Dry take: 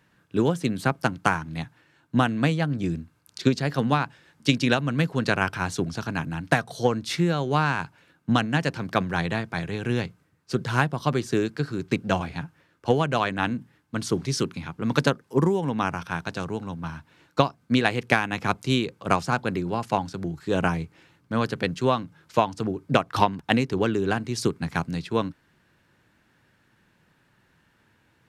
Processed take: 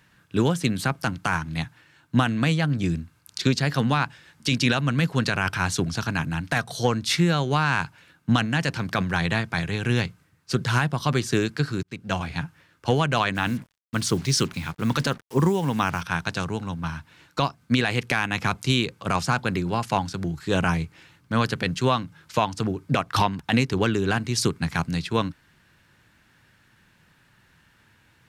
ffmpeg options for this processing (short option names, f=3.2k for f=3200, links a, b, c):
-filter_complex "[0:a]asplit=3[a][b][c];[a]afade=t=out:st=13.34:d=0.02[d];[b]acrusher=bits=7:mix=0:aa=0.5,afade=t=in:st=13.34:d=0.02,afade=t=out:st=16:d=0.02[e];[c]afade=t=in:st=16:d=0.02[f];[d][e][f]amix=inputs=3:normalize=0,asplit=2[g][h];[g]atrim=end=11.83,asetpts=PTS-STARTPTS,afade=t=out:st=11.826:d=0.004:c=hsin[i];[h]atrim=start=11.83,asetpts=PTS-STARTPTS,afade=t=in:d=0.56[j];[i][j]concat=n=2:v=0:a=1,equalizer=f=410:t=o:w=2.7:g=-7.5,alimiter=limit=-16.5dB:level=0:latency=1:release=17,volume=7dB"